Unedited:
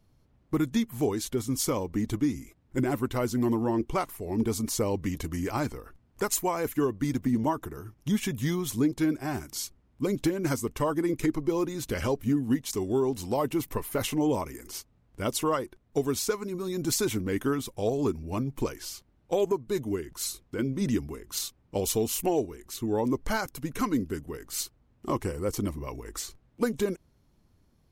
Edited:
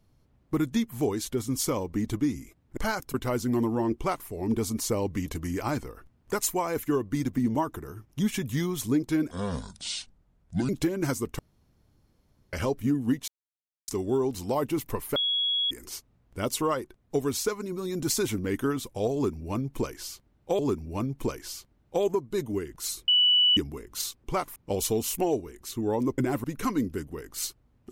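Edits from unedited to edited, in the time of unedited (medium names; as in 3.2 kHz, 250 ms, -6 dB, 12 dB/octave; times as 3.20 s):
2.77–3.03 s: swap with 23.23–23.60 s
3.85–4.17 s: copy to 21.61 s
9.20–10.11 s: speed 66%
10.81–11.95 s: room tone
12.70 s: insert silence 0.60 s
13.98–14.53 s: bleep 3.34 kHz -23.5 dBFS
17.96–19.41 s: loop, 2 plays
20.45–20.94 s: bleep 2.96 kHz -17.5 dBFS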